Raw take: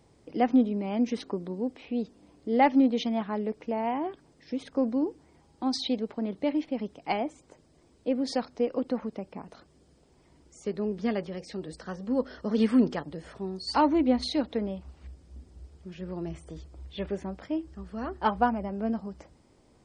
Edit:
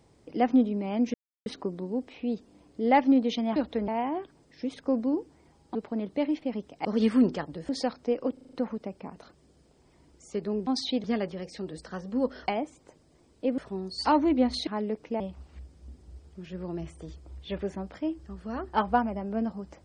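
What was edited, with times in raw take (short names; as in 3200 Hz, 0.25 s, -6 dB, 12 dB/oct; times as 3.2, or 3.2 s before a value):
1.14 insert silence 0.32 s
3.24–3.77 swap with 14.36–14.68
5.64–6.01 move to 10.99
7.11–8.21 swap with 12.43–13.27
8.85 stutter 0.04 s, 6 plays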